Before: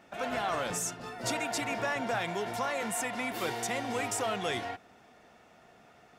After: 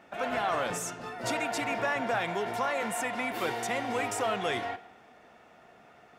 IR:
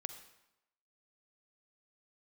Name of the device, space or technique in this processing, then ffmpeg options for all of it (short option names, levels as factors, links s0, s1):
filtered reverb send: -filter_complex "[0:a]asplit=2[s0][s1];[s1]highpass=f=310:p=1,lowpass=3600[s2];[1:a]atrim=start_sample=2205[s3];[s2][s3]afir=irnorm=-1:irlink=0,volume=1.06[s4];[s0][s4]amix=inputs=2:normalize=0,volume=0.794"